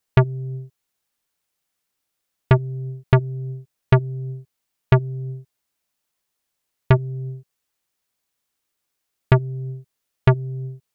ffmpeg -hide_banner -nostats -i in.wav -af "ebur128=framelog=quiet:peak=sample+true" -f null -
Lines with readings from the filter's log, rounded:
Integrated loudness:
  I:         -22.0 LUFS
  Threshold: -33.2 LUFS
Loudness range:
  LRA:         5.9 LU
  Threshold: -45.5 LUFS
  LRA low:   -28.8 LUFS
  LRA high:  -22.8 LUFS
Sample peak:
  Peak:       -4.4 dBFS
True peak:
  Peak:       -4.4 dBFS